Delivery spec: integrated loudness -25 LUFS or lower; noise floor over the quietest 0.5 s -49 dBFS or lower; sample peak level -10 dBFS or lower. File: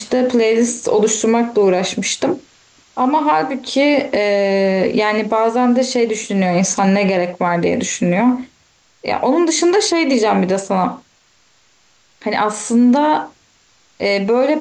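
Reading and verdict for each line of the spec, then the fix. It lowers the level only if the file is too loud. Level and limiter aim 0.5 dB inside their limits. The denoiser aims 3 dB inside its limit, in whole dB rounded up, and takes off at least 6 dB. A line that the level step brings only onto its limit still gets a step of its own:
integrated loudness -16.0 LUFS: fail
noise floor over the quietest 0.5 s -55 dBFS: OK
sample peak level -5.5 dBFS: fail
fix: gain -9.5 dB

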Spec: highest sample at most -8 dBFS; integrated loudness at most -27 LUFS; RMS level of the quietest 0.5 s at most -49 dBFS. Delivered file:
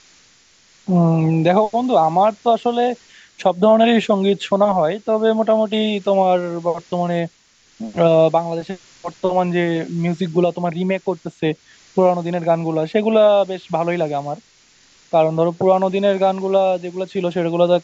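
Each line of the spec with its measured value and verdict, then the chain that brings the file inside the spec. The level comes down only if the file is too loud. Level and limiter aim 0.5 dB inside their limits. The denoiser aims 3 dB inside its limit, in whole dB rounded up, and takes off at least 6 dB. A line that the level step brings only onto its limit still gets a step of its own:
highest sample -3.0 dBFS: fail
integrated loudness -18.0 LUFS: fail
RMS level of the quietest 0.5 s -54 dBFS: OK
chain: gain -9.5 dB

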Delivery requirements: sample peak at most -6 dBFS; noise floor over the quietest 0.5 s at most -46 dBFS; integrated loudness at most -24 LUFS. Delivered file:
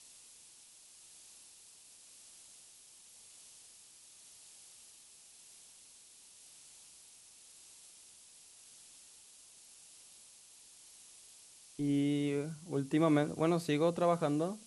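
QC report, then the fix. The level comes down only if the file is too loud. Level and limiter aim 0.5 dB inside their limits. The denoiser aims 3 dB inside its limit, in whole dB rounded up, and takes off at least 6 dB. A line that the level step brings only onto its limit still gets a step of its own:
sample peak -17.5 dBFS: OK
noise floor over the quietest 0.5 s -59 dBFS: OK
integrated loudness -32.5 LUFS: OK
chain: none

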